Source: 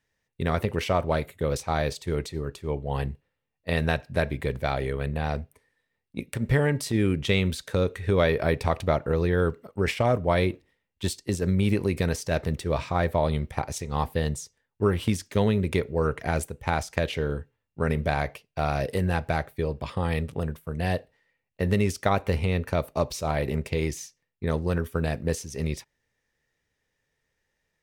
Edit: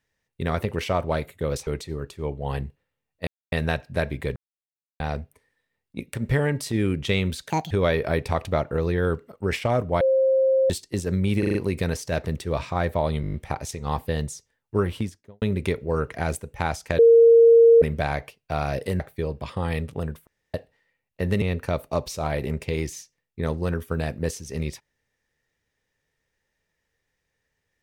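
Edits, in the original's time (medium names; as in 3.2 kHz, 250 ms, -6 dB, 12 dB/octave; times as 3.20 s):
1.67–2.12 s: delete
3.72 s: insert silence 0.25 s
4.56–5.20 s: mute
7.70–8.06 s: speed 173%
10.36–11.05 s: bleep 530 Hz -16 dBFS
11.74 s: stutter 0.04 s, 5 plays
13.41 s: stutter 0.02 s, 7 plays
14.86–15.49 s: studio fade out
17.06–17.89 s: bleep 462 Hz -9.5 dBFS
19.07–19.40 s: delete
20.67–20.94 s: room tone
21.82–22.46 s: delete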